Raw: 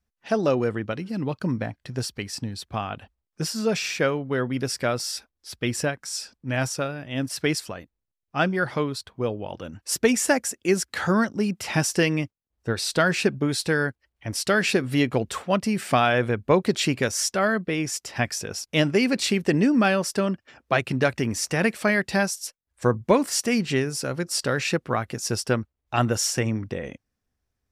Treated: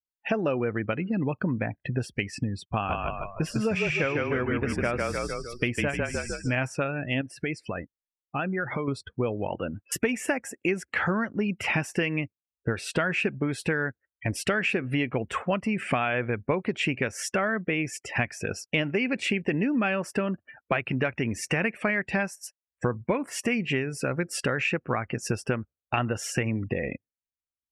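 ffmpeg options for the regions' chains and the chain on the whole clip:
ffmpeg -i in.wav -filter_complex "[0:a]asettb=1/sr,asplit=3[link_01][link_02][link_03];[link_01]atrim=end=2.654[link_04];[link_02]atrim=start=2.65:end=6.57,asetpts=PTS-STARTPTS,afade=type=in:duration=0.004:curve=qsin,afade=type=out:start_time=3.916:duration=0.004:curve=qsin,agate=range=-33dB:threshold=-46dB:ratio=3:release=100:detection=peak,aeval=exprs='sgn(val(0))*max(abs(val(0))-0.00224,0)':channel_layout=same,asplit=7[link_05][link_06][link_07][link_08][link_09][link_10][link_11];[link_06]adelay=152,afreqshift=-31,volume=-3dB[link_12];[link_07]adelay=304,afreqshift=-62,volume=-9.2dB[link_13];[link_08]adelay=456,afreqshift=-93,volume=-15.4dB[link_14];[link_09]adelay=608,afreqshift=-124,volume=-21.6dB[link_15];[link_10]adelay=760,afreqshift=-155,volume=-27.8dB[link_16];[link_11]adelay=912,afreqshift=-186,volume=-34dB[link_17];[link_05][link_12][link_13][link_14][link_15][link_16][link_17]amix=inputs=7:normalize=0,atrim=end_sample=172872[link_18];[link_03]atrim=start=6.566[link_19];[link_04][link_18]acrossfade=duration=0.004:curve1=hsin:curve2=qsin[link_20];[link_20][link_19]acrossfade=duration=0.004:curve1=qsin:curve2=hsin,asettb=1/sr,asplit=3[link_21][link_22][link_23];[link_21]atrim=end=7.214[link_24];[link_22]atrim=start=7.21:end=8.88,asetpts=PTS-STARTPTS,afade=type=in:duration=0.004:curve=qsin,afade=type=out:start_time=1.666:duration=0.004:curve=qsin,acompressor=threshold=-33dB:ratio=4:attack=3.2:release=140:knee=1:detection=peak,adynamicequalizer=threshold=0.00282:dfrequency=5400:dqfactor=0.7:tfrequency=5400:tqfactor=0.7:attack=5:release=100:ratio=0.375:range=2.5:mode=cutabove:tftype=highshelf[link_25];[link_23]atrim=start=8.876[link_26];[link_24][link_25]acrossfade=duration=0.004:curve1=hsin:curve2=qsin[link_27];[link_27][link_26]acrossfade=duration=0.004:curve1=qsin:curve2=hsin,asettb=1/sr,asplit=3[link_28][link_29][link_30];[link_28]atrim=end=9.484[link_31];[link_29]atrim=start=9.48:end=9.92,asetpts=PTS-STARTPTS,afade=type=in:duration=0.004:curve=qsin,afade=type=out:start_time=0.436:duration=0.004:curve=qsin,lowpass=frequency=3100:width=0.5412,lowpass=frequency=3100:width=1.3066,lowshelf=frequency=140:gain=-5[link_32];[link_30]atrim=start=9.916[link_33];[link_31][link_32]acrossfade=duration=0.004:curve1=hsin:curve2=qsin[link_34];[link_34][link_33]acrossfade=duration=0.004:curve1=qsin:curve2=hsin,afftdn=noise_reduction=36:noise_floor=-42,highshelf=frequency=3300:width_type=q:width=3:gain=-8.5,acompressor=threshold=-31dB:ratio=5,volume=6.5dB" out.wav

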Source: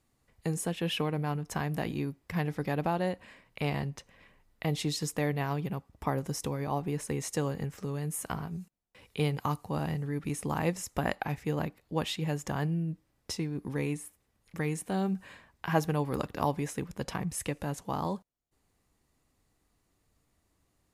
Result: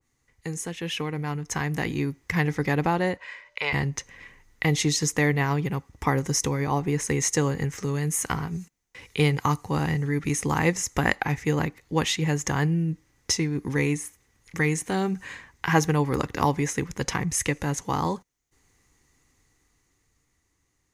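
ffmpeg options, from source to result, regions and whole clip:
ffmpeg -i in.wav -filter_complex "[0:a]asettb=1/sr,asplit=3[link_01][link_02][link_03];[link_01]atrim=end=3.174[link_04];[link_02]atrim=start=3.17:end=3.73,asetpts=PTS-STARTPTS,afade=type=in:duration=0.004:curve=qsin,afade=type=out:start_time=0.556:duration=0.004:curve=qsin,acrossover=split=530 5800:gain=0.0891 1 0.158[link_05][link_06][link_07];[link_05][link_06][link_07]amix=inputs=3:normalize=0,aeval=exprs='val(0)+0.000398*sin(2*PI*590*n/s)':channel_layout=same,aecho=1:1:2:0.4,atrim=end_sample=24696[link_08];[link_03]atrim=start=3.726[link_09];[link_04][link_08]acrossfade=duration=0.004:curve1=hsin:curve2=qsin[link_10];[link_10][link_09]acrossfade=duration=0.004:curve1=qsin:curve2=hsin,equalizer=frequency=200:width_type=o:width=0.33:gain=-6,equalizer=frequency=630:width_type=o:width=0.33:gain=-10,equalizer=frequency=2000:width_type=o:width=0.33:gain=8,equalizer=frequency=6300:width_type=o:width=0.33:gain=11,equalizer=frequency=12500:width_type=o:width=0.33:gain=-4,dynaudnorm=framelen=190:gausssize=17:maxgain=8.5dB,adynamicequalizer=threshold=0.02:dfrequency=1700:dqfactor=0.7:tfrequency=1700:tqfactor=0.7:attack=5:release=100:ratio=0.375:range=2.5:mode=cutabove:tftype=highshelf" out.wav

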